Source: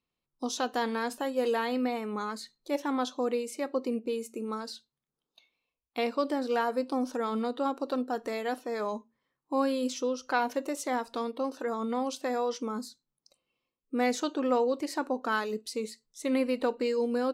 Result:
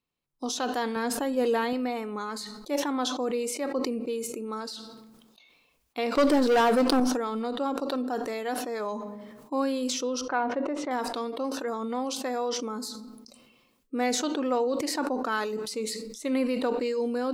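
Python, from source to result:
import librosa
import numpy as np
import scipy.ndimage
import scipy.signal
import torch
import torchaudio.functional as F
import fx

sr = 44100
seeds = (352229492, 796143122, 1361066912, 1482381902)

y = fx.low_shelf(x, sr, hz=280.0, db=9.0, at=(0.96, 1.73))
y = fx.leveller(y, sr, passes=3, at=(6.15, 7.0))
y = fx.lowpass(y, sr, hz=1800.0, slope=12, at=(10.21, 10.91))
y = fx.room_shoebox(y, sr, seeds[0], volume_m3=2800.0, walls='furnished', distance_m=0.35)
y = fx.sustainer(y, sr, db_per_s=36.0)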